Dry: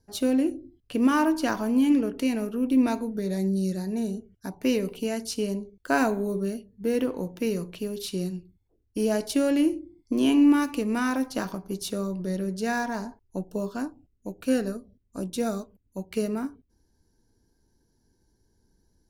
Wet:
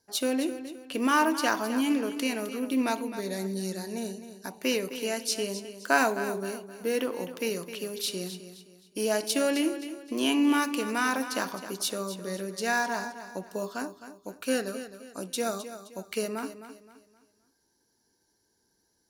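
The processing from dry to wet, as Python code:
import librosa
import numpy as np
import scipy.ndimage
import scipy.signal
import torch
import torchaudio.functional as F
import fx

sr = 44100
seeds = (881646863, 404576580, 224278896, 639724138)

p1 = fx.highpass(x, sr, hz=880.0, slope=6)
p2 = p1 + fx.echo_feedback(p1, sr, ms=261, feedback_pct=35, wet_db=-12.0, dry=0)
y = F.gain(torch.from_numpy(p2), 4.5).numpy()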